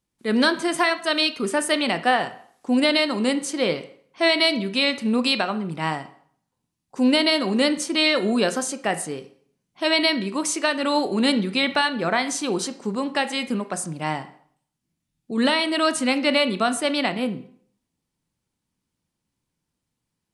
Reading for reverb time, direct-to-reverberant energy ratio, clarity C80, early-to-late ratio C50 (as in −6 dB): 0.55 s, 10.5 dB, 17.0 dB, 13.5 dB